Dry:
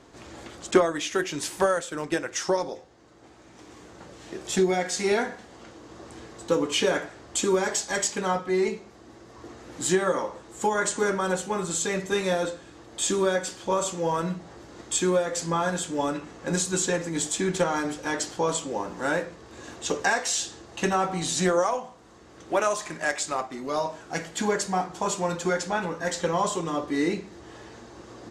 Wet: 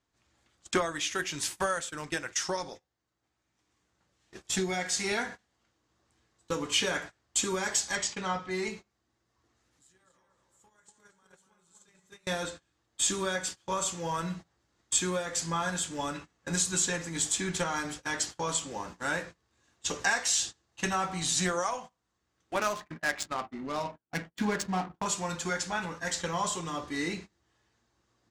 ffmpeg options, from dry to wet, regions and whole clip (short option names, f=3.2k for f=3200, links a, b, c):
-filter_complex "[0:a]asettb=1/sr,asplit=3[a][b][c];[a]atrim=end=7.954[d];[b]atrim=start=7.95:end=8.51,asetpts=PTS-STARTPTS,afade=t=in:d=0.004:c=qsin,afade=t=out:st=0.556:d=0.004:c=qsin,lowpass=5.5k,bandreject=f=1.6k:w=17[e];[c]atrim=start=8.506[f];[d][e]acrossfade=d=0.004:c1=hsin:c2=qsin[g];[g][f]acrossfade=d=0.004:c1=qsin:c2=hsin,asettb=1/sr,asplit=3[h][i][j];[h]atrim=end=9.554[k];[i]atrim=start=9.55:end=12.27,asetpts=PTS-STARTPTS,afade=t=in:d=0.004:c=qsin,afade=t=out:st=2.716:d=0.004:c=qsin,highshelf=f=4.8k:g=5,acompressor=threshold=-39dB:ratio=5:attack=3.2:release=140:knee=1:detection=peak,asplit=2[l][m];[m]adelay=242,lowpass=f=3.1k:p=1,volume=-4dB,asplit=2[n][o];[o]adelay=242,lowpass=f=3.1k:p=1,volume=0.53,asplit=2[p][q];[q]adelay=242,lowpass=f=3.1k:p=1,volume=0.53,asplit=2[r][s];[s]adelay=242,lowpass=f=3.1k:p=1,volume=0.53,asplit=2[t][u];[u]adelay=242,lowpass=f=3.1k:p=1,volume=0.53,asplit=2[v][w];[w]adelay=242,lowpass=f=3.1k:p=1,volume=0.53,asplit=2[x][y];[y]adelay=242,lowpass=f=3.1k:p=1,volume=0.53[z];[l][n][p][r][t][v][x][z]amix=inputs=8:normalize=0,atrim=end_sample=119952[aa];[j]atrim=start=12.266[ab];[k][aa]acrossfade=d=0.004:c1=hsin:c2=qsin[ac];[ac][ab]acrossfade=d=0.004:c1=qsin:c2=hsin,asettb=1/sr,asplit=3[ad][ae][af];[ad]atrim=end=22.554[ag];[ae]atrim=start=22.55:end=25.06,asetpts=PTS-STARTPTS,afade=t=in:d=0.004:c=qsin,afade=t=out:st=2.506:d=0.004:c=qsin,equalizer=f=240:t=o:w=1.3:g=6.5,agate=range=-33dB:threshold=-33dB:ratio=3:release=100:detection=peak,adynamicsmooth=sensitivity=5:basefreq=1.1k[ah];[af]atrim=start=25.056[ai];[ag][ah]acrossfade=d=0.004:c1=hsin:c2=qsin[aj];[aj][ai]acrossfade=d=0.004:c1=qsin:c2=hsin,agate=range=-23dB:threshold=-35dB:ratio=16:detection=peak,equalizer=f=420:t=o:w=2.3:g=-11"